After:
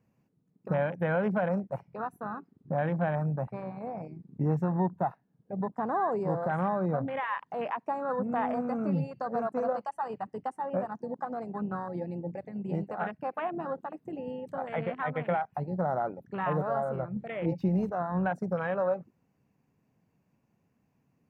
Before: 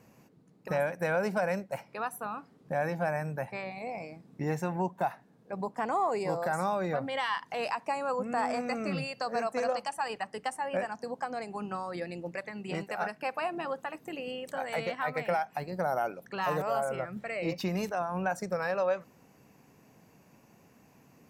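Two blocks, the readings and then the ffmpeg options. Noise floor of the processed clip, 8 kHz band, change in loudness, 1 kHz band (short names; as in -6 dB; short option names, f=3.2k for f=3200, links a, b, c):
-74 dBFS, under -20 dB, +1.0 dB, 0.0 dB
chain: -filter_complex "[0:a]bass=f=250:g=8,treble=f=4k:g=-6,afwtdn=0.0158,acrossover=split=2500[a][b];[b]acompressor=threshold=-56dB:ratio=4:attack=1:release=60[c];[a][c]amix=inputs=2:normalize=0"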